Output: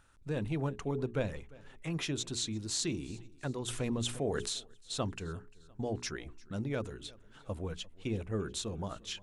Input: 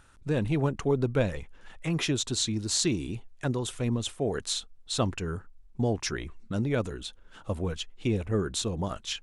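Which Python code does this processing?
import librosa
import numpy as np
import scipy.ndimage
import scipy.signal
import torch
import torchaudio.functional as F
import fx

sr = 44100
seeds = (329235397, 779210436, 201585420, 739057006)

p1 = fx.hum_notches(x, sr, base_hz=60, count=7)
p2 = p1 + fx.echo_feedback(p1, sr, ms=349, feedback_pct=47, wet_db=-23.0, dry=0)
p3 = fx.env_flatten(p2, sr, amount_pct=50, at=(3.67, 4.48), fade=0.02)
y = F.gain(torch.from_numpy(p3), -7.0).numpy()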